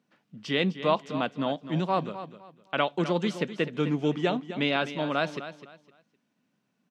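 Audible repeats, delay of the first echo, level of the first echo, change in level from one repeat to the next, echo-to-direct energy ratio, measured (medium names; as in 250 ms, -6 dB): 2, 255 ms, -12.5 dB, -11.5 dB, -12.0 dB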